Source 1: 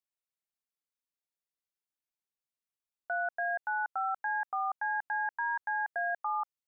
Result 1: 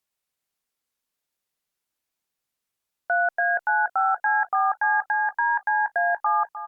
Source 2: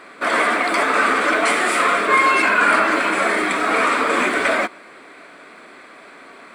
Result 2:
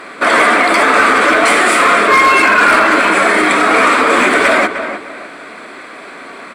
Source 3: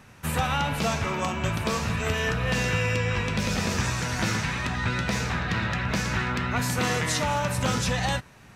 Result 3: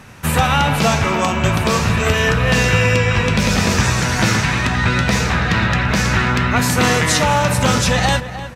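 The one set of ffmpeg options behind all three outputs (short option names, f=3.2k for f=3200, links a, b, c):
-filter_complex "[0:a]asoftclip=type=hard:threshold=-10dB,asplit=2[a][b];[b]adelay=304,lowpass=f=2.3k:p=1,volume=-11.5dB,asplit=2[c][d];[d]adelay=304,lowpass=f=2.3k:p=1,volume=0.3,asplit=2[e][f];[f]adelay=304,lowpass=f=2.3k:p=1,volume=0.3[g];[a][c][e][g]amix=inputs=4:normalize=0,alimiter=level_in=11.5dB:limit=-1dB:release=50:level=0:latency=1,volume=-1dB" -ar 48000 -c:a libopus -b:a 256k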